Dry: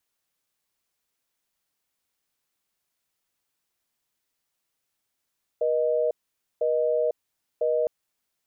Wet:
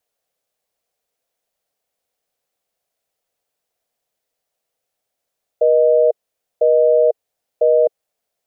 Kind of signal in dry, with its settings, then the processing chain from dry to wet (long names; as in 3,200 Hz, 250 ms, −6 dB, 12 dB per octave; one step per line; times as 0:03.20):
call progress tone busy tone, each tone −23.5 dBFS 2.26 s
flat-topped bell 580 Hz +11 dB 1 octave